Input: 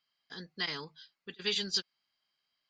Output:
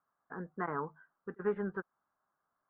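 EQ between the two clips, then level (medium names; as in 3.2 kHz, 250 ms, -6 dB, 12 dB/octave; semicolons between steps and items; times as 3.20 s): steep low-pass 1.4 kHz 48 dB/octave; tilt EQ +3 dB/octave; bass shelf 87 Hz +11 dB; +9.5 dB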